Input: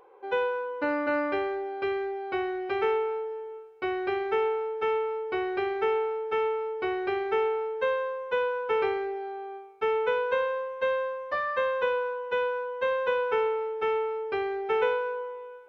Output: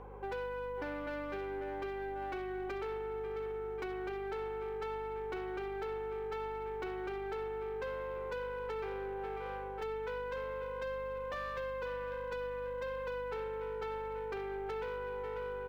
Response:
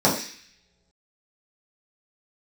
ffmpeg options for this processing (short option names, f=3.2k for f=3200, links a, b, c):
-filter_complex "[0:a]lowpass=2.7k,lowshelf=f=82:g=-3.5,asplit=2[a][b];[b]asoftclip=type=hard:threshold=-24dB,volume=-7dB[c];[a][c]amix=inputs=2:normalize=0,aecho=1:1:542|1084|1626|2168:0.251|0.1|0.0402|0.0161,acompressor=threshold=-35dB:ratio=12,asoftclip=type=tanh:threshold=-36dB,aeval=exprs='val(0)+0.00251*(sin(2*PI*50*n/s)+sin(2*PI*2*50*n/s)/2+sin(2*PI*3*50*n/s)/3+sin(2*PI*4*50*n/s)/4+sin(2*PI*5*50*n/s)/5)':c=same,volume=1dB" -ar 44100 -c:a adpcm_ima_wav